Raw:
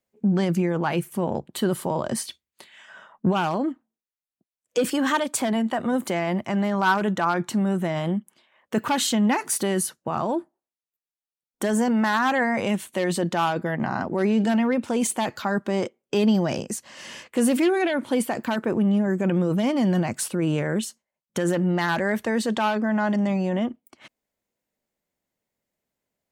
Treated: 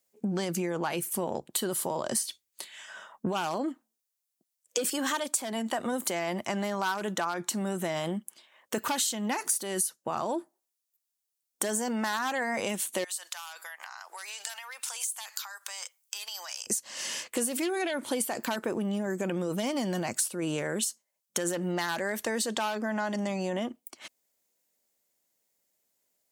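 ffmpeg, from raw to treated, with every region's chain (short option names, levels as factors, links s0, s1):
-filter_complex "[0:a]asettb=1/sr,asplit=3[s0][s1][s2];[s0]atrim=end=13.044[s3];[s1]atrim=start=13.04:end=16.67,asetpts=PTS-STARTPTS,afade=t=in:d=0.004:c=qsin,afade=t=out:st=3.626:d=0.004:c=qsin,highpass=f=970:w=0.5412,highpass=f=970:w=1.3066,highshelf=f=5000:g=11,acompressor=threshold=0.0112:ratio=12:attack=3.2:release=140:knee=1:detection=peak[s4];[s2]atrim=start=16.666[s5];[s3][s4]acrossfade=d=0.004:c1=hsin:c2=qsin[s6];[s6][s5]acrossfade=d=0.004:c1=qsin:c2=hsin,bass=f=250:g=-9,treble=f=4000:g=12,acompressor=threshold=0.0447:ratio=6"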